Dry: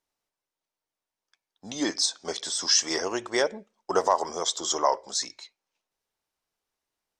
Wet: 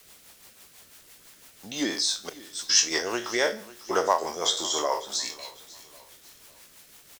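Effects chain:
peak hold with a decay on every bin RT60 0.39 s
0:02.29–0:03.00: noise gate −26 dBFS, range −21 dB
parametric band 2,500 Hz +6 dB 1.6 octaves
in parallel at −10.5 dB: bit-depth reduction 6 bits, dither triangular
on the sum: rotating-speaker cabinet horn 6 Hz
on a send: repeating echo 549 ms, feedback 36%, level −19.5 dB
on the sum: level −2.5 dB

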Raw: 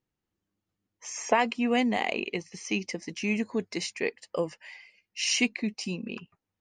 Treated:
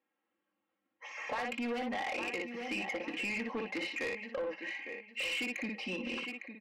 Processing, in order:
low-pass filter 2,800 Hz 24 dB per octave
comb filter 3.7 ms, depth 86%
ambience of single reflections 21 ms −12.5 dB, 59 ms −6.5 dB
hard clipping −14.5 dBFS, distortion −20 dB
brickwall limiter −19.5 dBFS, peak gain reduction 5 dB
high-pass filter 430 Hz 12 dB per octave
repeating echo 856 ms, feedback 24%, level −14 dB
downward compressor 6 to 1, threshold −32 dBFS, peak gain reduction 8.5 dB
soft clipping −34.5 dBFS, distortion −12 dB
level +3.5 dB

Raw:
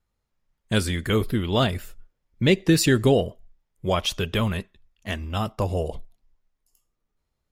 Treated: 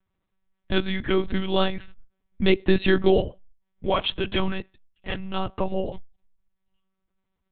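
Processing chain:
one-pitch LPC vocoder at 8 kHz 190 Hz

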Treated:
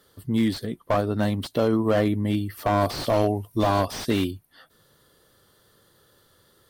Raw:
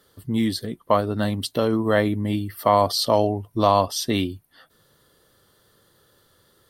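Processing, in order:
0:02.81–0:04.31: high-shelf EQ 4,100 Hz +11 dB
slew-rate limiting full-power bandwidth 99 Hz

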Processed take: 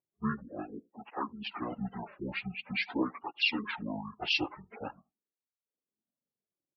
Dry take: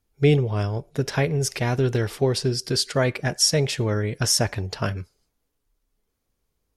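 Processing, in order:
phase-vocoder pitch shift without resampling −12 semitones
high-pass filter 310 Hz 12 dB per octave
high-frequency loss of the air 100 metres
on a send: single-tap delay 76 ms −15 dB
on the sum: amplitude modulation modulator 220 Hz, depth 20%
low-pass that shuts in the quiet parts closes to 450 Hz, open at −23.5 dBFS
gate on every frequency bin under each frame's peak −25 dB strong
reverb reduction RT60 0.65 s
through-zero flanger with one copy inverted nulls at 0.45 Hz, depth 4.6 ms

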